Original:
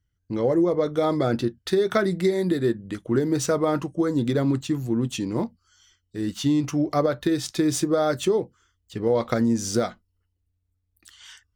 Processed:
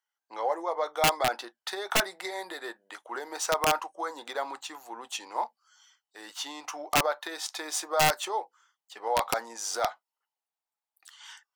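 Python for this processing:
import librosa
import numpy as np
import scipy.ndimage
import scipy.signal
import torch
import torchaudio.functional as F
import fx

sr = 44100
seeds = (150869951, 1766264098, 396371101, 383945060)

y = fx.ladder_highpass(x, sr, hz=750.0, resonance_pct=65)
y = (np.mod(10.0 ** (24.0 / 20.0) * y + 1.0, 2.0) - 1.0) / 10.0 ** (24.0 / 20.0)
y = y * 10.0 ** (8.5 / 20.0)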